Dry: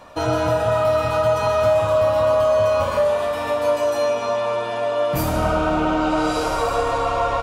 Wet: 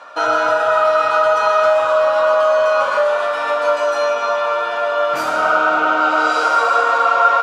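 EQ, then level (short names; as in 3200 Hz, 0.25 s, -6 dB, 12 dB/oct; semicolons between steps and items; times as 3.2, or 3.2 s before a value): BPF 540–6300 Hz; bell 1400 Hz +13 dB 0.28 oct; +4.0 dB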